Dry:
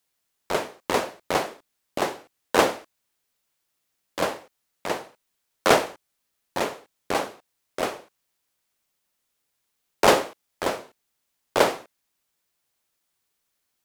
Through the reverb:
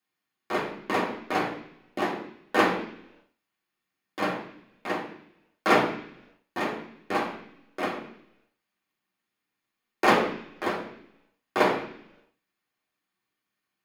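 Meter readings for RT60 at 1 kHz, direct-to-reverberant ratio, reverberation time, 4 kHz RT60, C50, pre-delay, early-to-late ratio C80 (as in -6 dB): 0.70 s, -5.0 dB, 0.70 s, 0.95 s, 8.0 dB, 3 ms, 11.0 dB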